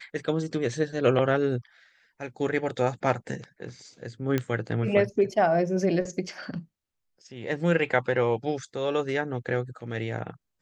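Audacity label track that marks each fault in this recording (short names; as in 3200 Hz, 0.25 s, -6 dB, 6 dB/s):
4.380000	4.380000	pop -13 dBFS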